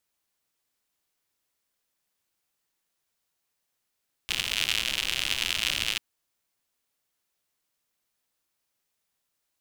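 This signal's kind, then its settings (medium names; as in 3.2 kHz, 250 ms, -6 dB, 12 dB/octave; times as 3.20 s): rain from filtered ticks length 1.69 s, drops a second 110, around 2.9 kHz, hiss -14 dB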